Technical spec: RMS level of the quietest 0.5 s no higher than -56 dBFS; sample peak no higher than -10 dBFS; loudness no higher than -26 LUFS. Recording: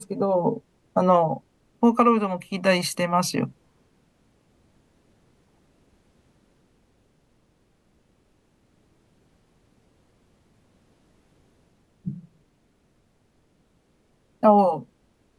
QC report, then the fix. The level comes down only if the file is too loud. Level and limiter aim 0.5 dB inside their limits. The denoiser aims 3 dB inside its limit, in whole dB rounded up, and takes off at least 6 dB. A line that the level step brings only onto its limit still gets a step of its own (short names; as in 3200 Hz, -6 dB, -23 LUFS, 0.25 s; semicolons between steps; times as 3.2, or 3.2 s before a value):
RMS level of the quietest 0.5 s -65 dBFS: OK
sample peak -4.5 dBFS: fail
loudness -22.5 LUFS: fail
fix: gain -4 dB; limiter -10.5 dBFS